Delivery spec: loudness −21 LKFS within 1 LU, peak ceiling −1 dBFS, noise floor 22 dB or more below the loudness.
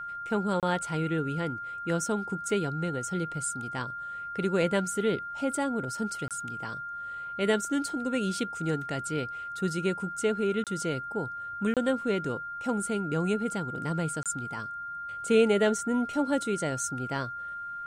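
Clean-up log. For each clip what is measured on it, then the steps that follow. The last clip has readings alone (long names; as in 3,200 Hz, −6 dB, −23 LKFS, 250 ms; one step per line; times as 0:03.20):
number of dropouts 5; longest dropout 27 ms; interfering tone 1,400 Hz; level of the tone −35 dBFS; integrated loudness −30.0 LKFS; sample peak −11.5 dBFS; target loudness −21.0 LKFS
→ repair the gap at 0:00.60/0:06.28/0:10.64/0:11.74/0:14.23, 27 ms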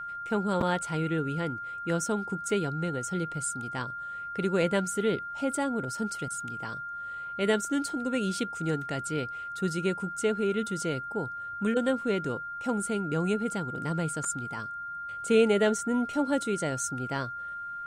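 number of dropouts 0; interfering tone 1,400 Hz; level of the tone −35 dBFS
→ notch filter 1,400 Hz, Q 30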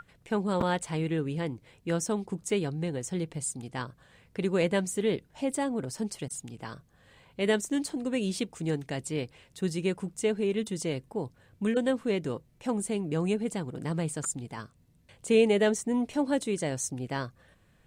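interfering tone none found; integrated loudness −30.5 LKFS; sample peak −12.0 dBFS; target loudness −21.0 LKFS
→ level +9.5 dB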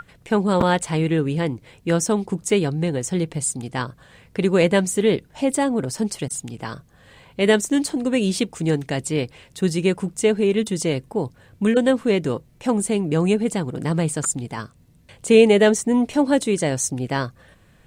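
integrated loudness −21.0 LKFS; sample peak −2.5 dBFS; background noise floor −54 dBFS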